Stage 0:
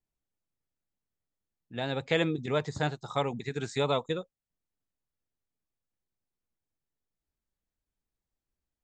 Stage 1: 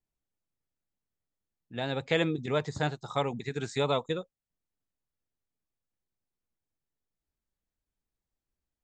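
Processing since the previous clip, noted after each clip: no audible change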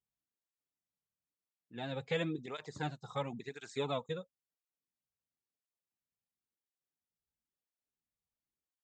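cancelling through-zero flanger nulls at 0.97 Hz, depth 3.5 ms; trim -5.5 dB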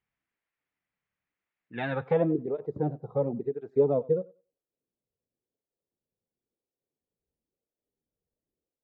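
low-pass sweep 2.1 kHz -> 470 Hz, 1.85–2.37 s; thinning echo 95 ms, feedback 20%, high-pass 260 Hz, level -21 dB; trim +8 dB

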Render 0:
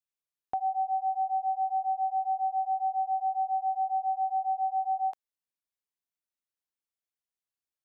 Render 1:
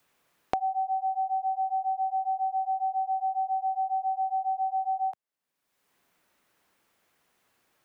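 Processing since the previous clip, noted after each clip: three bands compressed up and down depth 100%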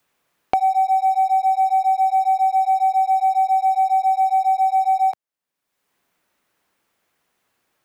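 waveshaping leveller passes 2; trim +4 dB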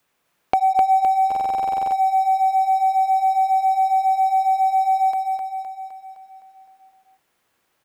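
on a send: feedback delay 257 ms, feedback 56%, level -4.5 dB; on the sum: buffer glitch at 1.27 s, samples 2048, times 13

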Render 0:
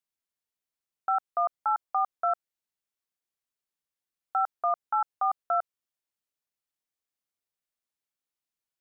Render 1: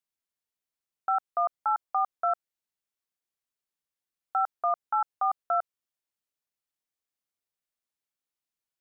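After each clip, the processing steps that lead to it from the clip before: no audible change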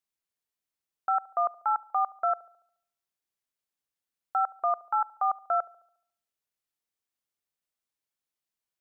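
feedback echo behind a low-pass 71 ms, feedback 49%, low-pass 990 Hz, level -19 dB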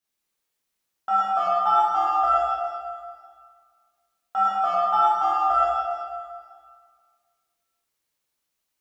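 in parallel at -6 dB: saturation -29.5 dBFS, distortion -9 dB; on the sum: plate-style reverb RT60 1.9 s, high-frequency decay 0.95×, DRR -9.5 dB; trim -3 dB

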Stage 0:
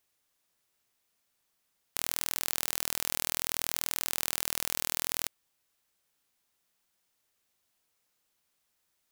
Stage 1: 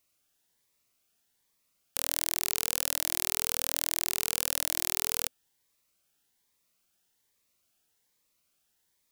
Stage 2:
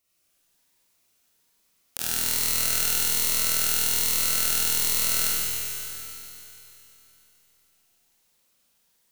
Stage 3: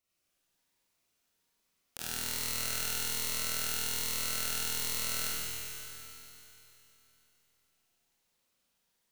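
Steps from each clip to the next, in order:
Shepard-style phaser rising 1.2 Hz; trim +2.5 dB
Schroeder reverb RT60 3.3 s, combs from 33 ms, DRR -8.5 dB; trim -2 dB
treble shelf 6 kHz -6.5 dB; trim -6 dB

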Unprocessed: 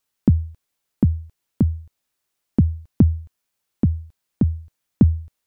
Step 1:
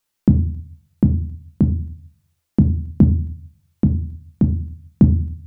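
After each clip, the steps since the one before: simulated room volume 280 m³, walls furnished, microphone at 0.8 m; trim +1.5 dB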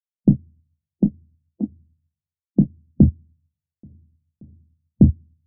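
spectral noise reduction 29 dB; steep low-pass 710 Hz 36 dB/octave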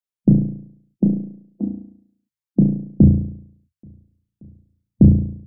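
reverb removal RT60 0.71 s; flutter echo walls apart 6 m, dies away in 0.65 s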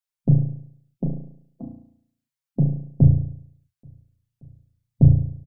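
peaking EQ 290 Hz -14.5 dB 1.1 oct; comb 7.4 ms, depth 80%

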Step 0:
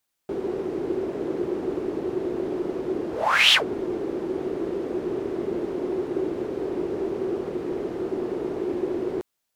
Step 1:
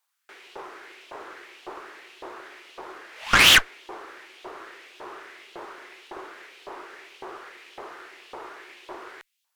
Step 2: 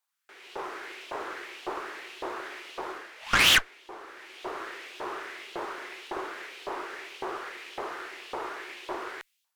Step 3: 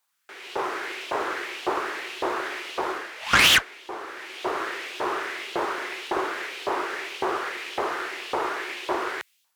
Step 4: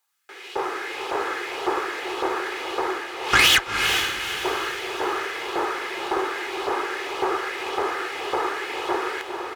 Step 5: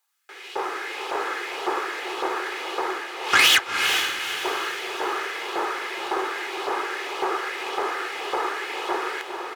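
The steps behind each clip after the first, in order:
LFO high-pass saw up 1.8 Hz 870–3200 Hz; Chebyshev shaper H 8 -16 dB, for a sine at -3 dBFS
level rider gain up to 11 dB; trim -6.5 dB
high-pass 55 Hz; loudness maximiser +15 dB; trim -6.5 dB
comb 2.4 ms, depth 42%; on a send: echo that smears into a reverb 453 ms, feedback 47%, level -5.5 dB
high-pass 380 Hz 6 dB/octave

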